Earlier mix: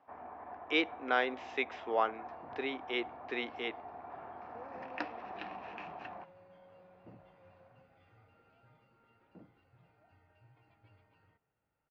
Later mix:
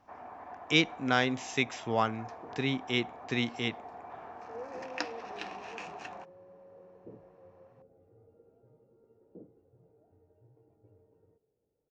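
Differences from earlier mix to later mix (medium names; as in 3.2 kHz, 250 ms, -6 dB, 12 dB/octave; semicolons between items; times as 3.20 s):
speech: remove high-pass 350 Hz 24 dB/octave; second sound: add resonant low-pass 440 Hz, resonance Q 4.4; master: remove distance through air 350 m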